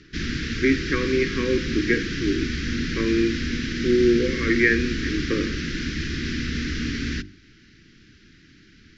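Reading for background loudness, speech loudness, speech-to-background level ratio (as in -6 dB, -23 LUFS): -28.0 LUFS, -23.5 LUFS, 4.5 dB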